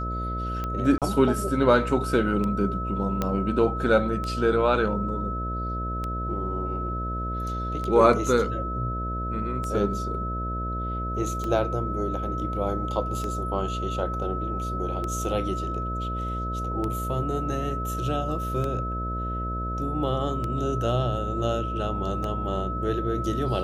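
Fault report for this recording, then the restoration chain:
buzz 60 Hz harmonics 11 -31 dBFS
tick 33 1/3 rpm -18 dBFS
tone 1300 Hz -31 dBFS
0.98–1.02 gap 37 ms
3.22 pop -12 dBFS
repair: de-click; de-hum 60 Hz, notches 11; notch 1300 Hz, Q 30; interpolate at 0.98, 37 ms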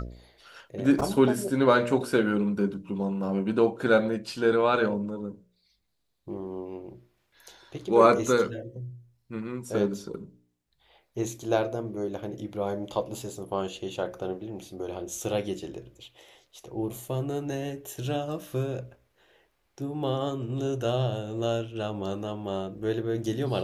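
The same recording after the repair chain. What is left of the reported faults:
none

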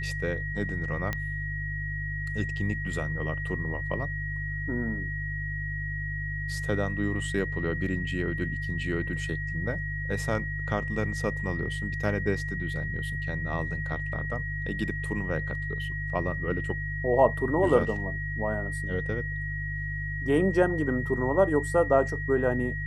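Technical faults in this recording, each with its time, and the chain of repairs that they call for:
hum 50 Hz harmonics 3 -34 dBFS
tone 1900 Hz -34 dBFS
1.13 pop -16 dBFS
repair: de-click; de-hum 50 Hz, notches 3; notch 1900 Hz, Q 30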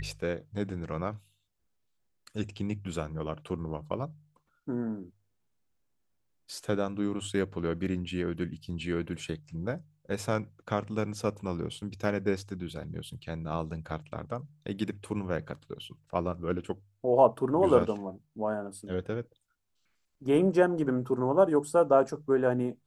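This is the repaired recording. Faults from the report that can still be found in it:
none

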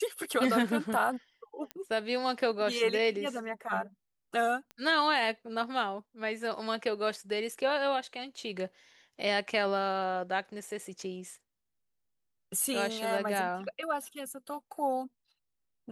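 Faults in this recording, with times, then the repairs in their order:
1.71 pop -23 dBFS
4.71 pop -30 dBFS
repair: de-click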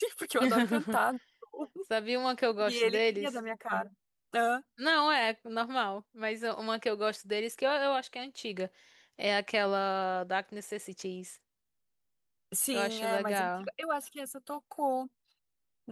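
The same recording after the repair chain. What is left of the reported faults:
none

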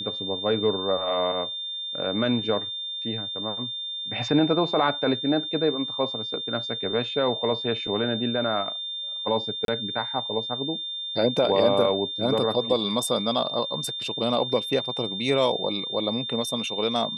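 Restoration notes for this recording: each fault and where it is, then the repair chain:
tone 3600 Hz -30 dBFS
9.65–9.68 gap 32 ms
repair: notch 3600 Hz, Q 30; interpolate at 9.65, 32 ms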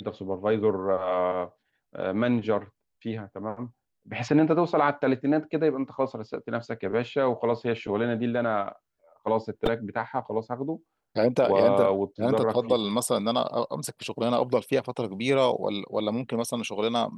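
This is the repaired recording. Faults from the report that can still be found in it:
none

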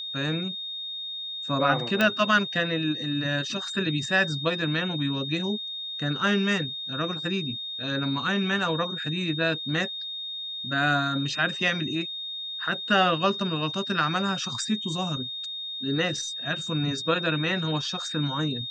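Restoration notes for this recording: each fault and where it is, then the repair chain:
tone 3700 Hz -32 dBFS
2.01 pop -9 dBFS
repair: de-click; notch 3700 Hz, Q 30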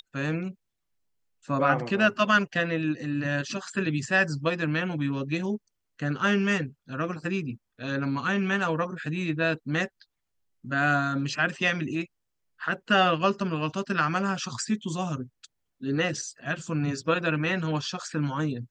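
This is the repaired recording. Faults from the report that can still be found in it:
none

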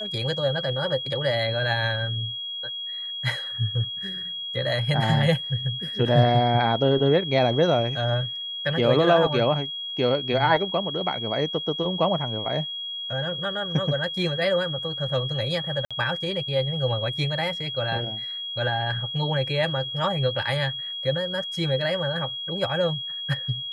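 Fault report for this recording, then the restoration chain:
tone 3300 Hz -30 dBFS
15.85–15.91 gap 56 ms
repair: notch 3300 Hz, Q 30; interpolate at 15.85, 56 ms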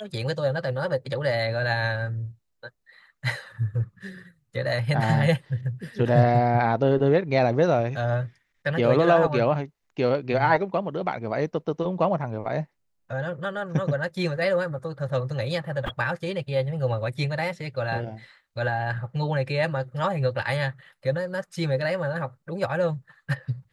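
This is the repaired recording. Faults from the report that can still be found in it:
none

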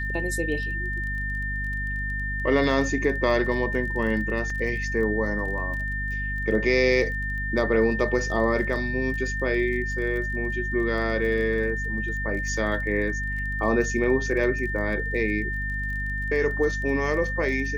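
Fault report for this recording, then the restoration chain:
crackle 23/s -34 dBFS
hum 50 Hz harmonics 5 -31 dBFS
tone 1800 Hz -29 dBFS
4.5 gap 2.8 ms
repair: de-click; de-hum 50 Hz, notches 5; notch 1800 Hz, Q 30; interpolate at 4.5, 2.8 ms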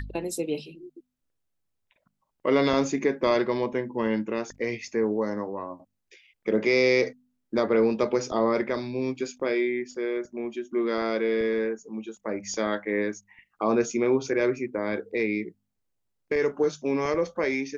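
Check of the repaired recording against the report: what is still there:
none

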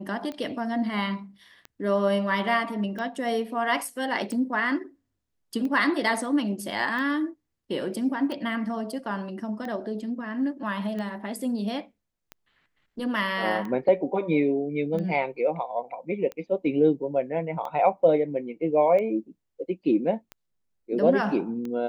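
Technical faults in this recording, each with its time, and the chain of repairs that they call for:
tick 45 rpm -23 dBFS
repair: de-click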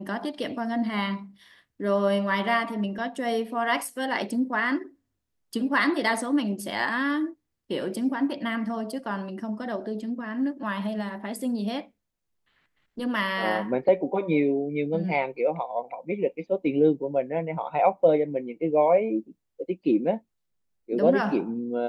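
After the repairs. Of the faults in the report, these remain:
none

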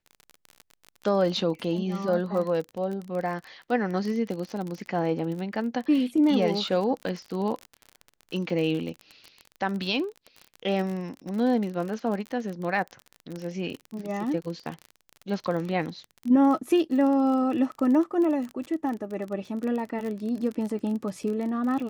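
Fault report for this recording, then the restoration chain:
crackle 36/s -31 dBFS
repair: de-click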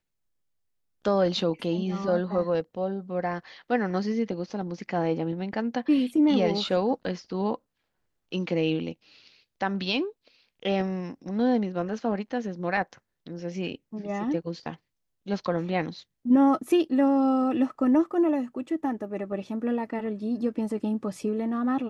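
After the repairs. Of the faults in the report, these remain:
none

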